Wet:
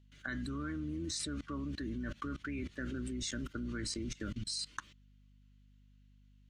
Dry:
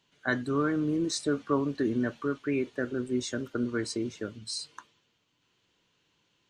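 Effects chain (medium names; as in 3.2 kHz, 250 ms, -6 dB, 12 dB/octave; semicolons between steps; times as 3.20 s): octave divider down 2 oct, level -5 dB; high-order bell 650 Hz -12.5 dB; small resonant body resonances 580/1100/2000 Hz, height 7 dB, ringing for 45 ms; level held to a coarse grid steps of 23 dB; hum 50 Hz, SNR 22 dB; trim +7.5 dB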